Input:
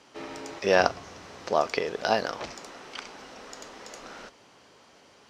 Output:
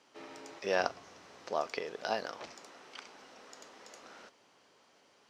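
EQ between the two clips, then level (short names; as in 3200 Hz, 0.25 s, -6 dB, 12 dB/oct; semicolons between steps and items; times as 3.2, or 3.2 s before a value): HPF 210 Hz 6 dB/oct; -9.0 dB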